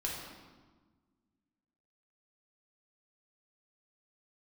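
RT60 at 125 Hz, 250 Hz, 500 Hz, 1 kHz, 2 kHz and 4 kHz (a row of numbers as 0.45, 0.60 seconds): 1.9, 2.2, 1.4, 1.3, 1.1, 1.0 seconds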